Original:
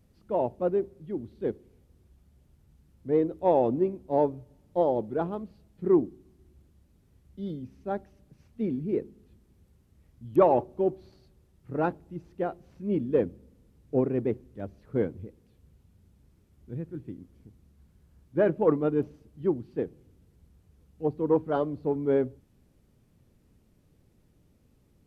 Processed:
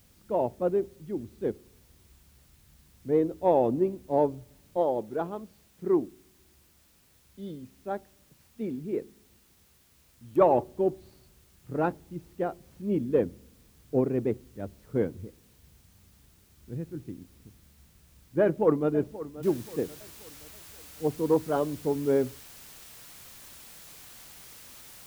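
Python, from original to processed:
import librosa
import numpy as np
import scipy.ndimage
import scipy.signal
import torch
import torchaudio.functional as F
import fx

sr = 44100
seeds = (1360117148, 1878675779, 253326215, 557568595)

y = fx.low_shelf(x, sr, hz=260.0, db=-8.0, at=(4.77, 10.41))
y = fx.echo_throw(y, sr, start_s=18.41, length_s=0.51, ms=530, feedback_pct=45, wet_db=-15.5)
y = fx.noise_floor_step(y, sr, seeds[0], at_s=19.43, before_db=-64, after_db=-49, tilt_db=0.0)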